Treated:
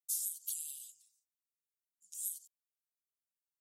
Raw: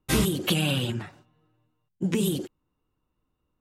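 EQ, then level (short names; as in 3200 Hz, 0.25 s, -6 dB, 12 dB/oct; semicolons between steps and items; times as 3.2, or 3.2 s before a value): inverse Chebyshev high-pass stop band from 1600 Hz, stop band 70 dB; -2.0 dB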